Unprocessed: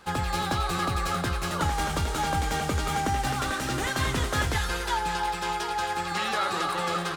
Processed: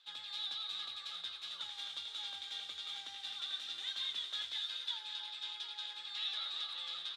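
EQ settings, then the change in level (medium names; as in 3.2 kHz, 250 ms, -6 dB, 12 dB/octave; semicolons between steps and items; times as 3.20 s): band-pass filter 3.6 kHz, Q 12; +4.0 dB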